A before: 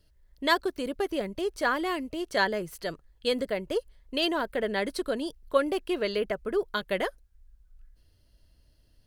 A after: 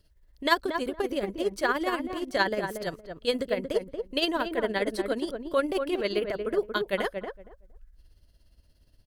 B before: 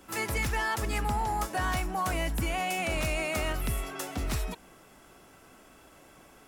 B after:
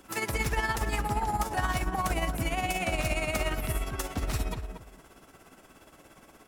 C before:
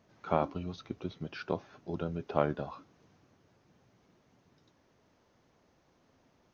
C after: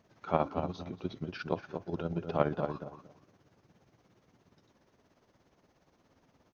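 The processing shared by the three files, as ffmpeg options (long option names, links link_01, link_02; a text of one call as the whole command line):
ffmpeg -i in.wav -filter_complex "[0:a]tremolo=f=17:d=0.58,asplit=2[link_01][link_02];[link_02]adelay=232,lowpass=frequency=1200:poles=1,volume=-5.5dB,asplit=2[link_03][link_04];[link_04]adelay=232,lowpass=frequency=1200:poles=1,volume=0.2,asplit=2[link_05][link_06];[link_06]adelay=232,lowpass=frequency=1200:poles=1,volume=0.2[link_07];[link_03][link_05][link_07]amix=inputs=3:normalize=0[link_08];[link_01][link_08]amix=inputs=2:normalize=0,volume=2.5dB" out.wav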